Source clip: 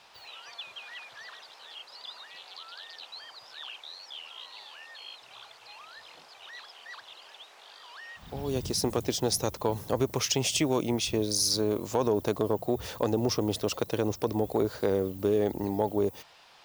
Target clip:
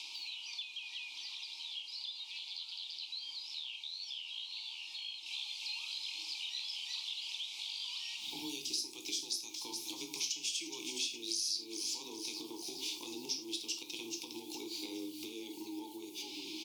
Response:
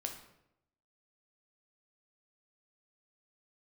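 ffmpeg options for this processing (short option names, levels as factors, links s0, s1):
-filter_complex "[0:a]asplit=6[s0][s1][s2][s3][s4][s5];[s1]adelay=416,afreqshift=-38,volume=0.178[s6];[s2]adelay=832,afreqshift=-76,volume=0.0955[s7];[s3]adelay=1248,afreqshift=-114,volume=0.0519[s8];[s4]adelay=1664,afreqshift=-152,volume=0.0279[s9];[s5]adelay=2080,afreqshift=-190,volume=0.0151[s10];[s0][s6][s7][s8][s9][s10]amix=inputs=6:normalize=0,alimiter=limit=0.0841:level=0:latency=1:release=490,asplit=3[s11][s12][s13];[s11]bandpass=f=300:t=q:w=8,volume=1[s14];[s12]bandpass=f=870:t=q:w=8,volume=0.501[s15];[s13]bandpass=f=2240:t=q:w=8,volume=0.355[s16];[s14][s15][s16]amix=inputs=3:normalize=0,aexciter=amount=15.9:drive=9.9:freq=2900,acompressor=threshold=0.00141:ratio=4[s17];[1:a]atrim=start_sample=2205,afade=t=out:st=0.16:d=0.01,atrim=end_sample=7497[s18];[s17][s18]afir=irnorm=-1:irlink=0,afreqshift=21,asetnsamples=n=441:p=0,asendcmd='5.26 highshelf g 9',highshelf=f=2100:g=3.5,volume=3.35"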